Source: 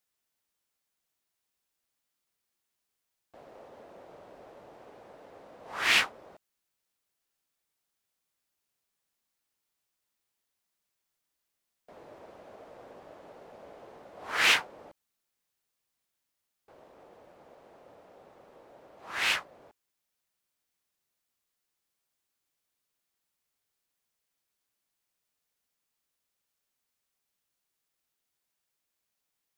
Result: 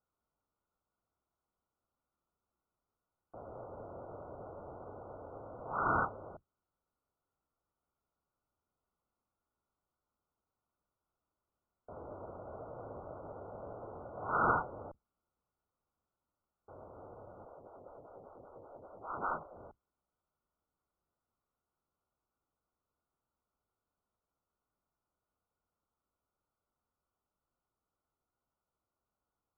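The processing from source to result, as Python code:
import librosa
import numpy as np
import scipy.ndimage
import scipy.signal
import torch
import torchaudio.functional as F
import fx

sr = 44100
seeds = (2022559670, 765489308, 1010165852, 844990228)

y = fx.octave_divider(x, sr, octaves=2, level_db=0.0)
y = fx.brickwall_lowpass(y, sr, high_hz=1500.0)
y = fx.stagger_phaser(y, sr, hz=5.1, at=(17.45, 19.56))
y = F.gain(torch.from_numpy(y), 3.0).numpy()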